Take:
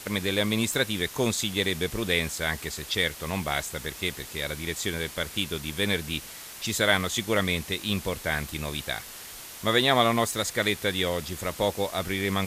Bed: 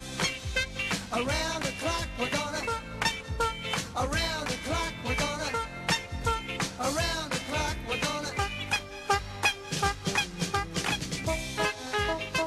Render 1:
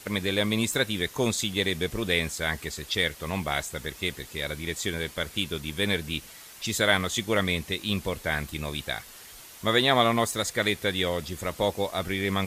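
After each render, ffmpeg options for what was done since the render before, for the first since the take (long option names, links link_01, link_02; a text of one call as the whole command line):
ffmpeg -i in.wav -af "afftdn=noise_reduction=6:noise_floor=-43" out.wav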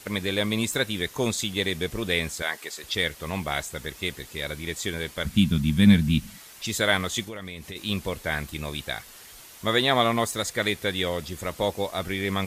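ffmpeg -i in.wav -filter_complex "[0:a]asettb=1/sr,asplit=3[link_01][link_02][link_03];[link_01]atrim=end=2.424[link_04];[link_02]atrim=start=2.42:end=2.84,asetpts=PTS-STARTPTS,afade=type=in:duration=0.004:curve=qsin,afade=type=out:start_time=0.416:duration=0.004:curve=qsin,highpass=420[link_05];[link_03]atrim=start=2.836[link_06];[link_04][link_05]acrossfade=duration=0.004:curve1=hsin:curve2=qsin[link_07];[link_07][link_06]acrossfade=duration=0.004:curve1=qsin:curve2=hsin,asettb=1/sr,asplit=3[link_08][link_09][link_10];[link_08]atrim=end=5.254[link_11];[link_09]atrim=start=5.25:end=6.38,asetpts=PTS-STARTPTS,afade=type=in:duration=0.004:curve=qsin,afade=type=out:start_time=1.126:duration=0.004:curve=qsin,lowshelf=frequency=290:width_type=q:width=3:gain=10.5[link_12];[link_10]atrim=start=6.376[link_13];[link_11][link_12]acrossfade=duration=0.004:curve1=hsin:curve2=qsin[link_14];[link_14][link_13]acrossfade=duration=0.004:curve1=qsin:curve2=hsin,asplit=3[link_15][link_16][link_17];[link_15]afade=type=out:start_time=7.24:duration=0.02[link_18];[link_16]acompressor=threshold=-34dB:ratio=5:attack=3.2:release=140:knee=1:detection=peak,afade=type=in:start_time=7.24:duration=0.02,afade=type=out:start_time=7.75:duration=0.02[link_19];[link_17]afade=type=in:start_time=7.75:duration=0.02[link_20];[link_18][link_19][link_20]amix=inputs=3:normalize=0" out.wav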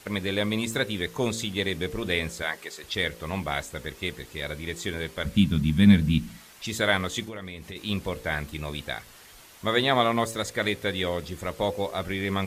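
ffmpeg -i in.wav -af "highshelf=frequency=4100:gain=-6.5,bandreject=frequency=56.57:width_type=h:width=4,bandreject=frequency=113.14:width_type=h:width=4,bandreject=frequency=169.71:width_type=h:width=4,bandreject=frequency=226.28:width_type=h:width=4,bandreject=frequency=282.85:width_type=h:width=4,bandreject=frequency=339.42:width_type=h:width=4,bandreject=frequency=395.99:width_type=h:width=4,bandreject=frequency=452.56:width_type=h:width=4,bandreject=frequency=509.13:width_type=h:width=4,bandreject=frequency=565.7:width_type=h:width=4" out.wav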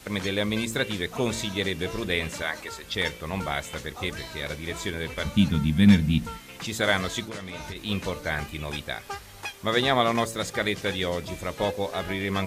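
ffmpeg -i in.wav -i bed.wav -filter_complex "[1:a]volume=-10dB[link_01];[0:a][link_01]amix=inputs=2:normalize=0" out.wav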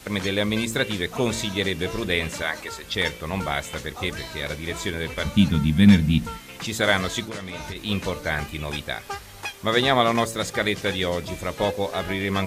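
ffmpeg -i in.wav -af "volume=3dB,alimiter=limit=-3dB:level=0:latency=1" out.wav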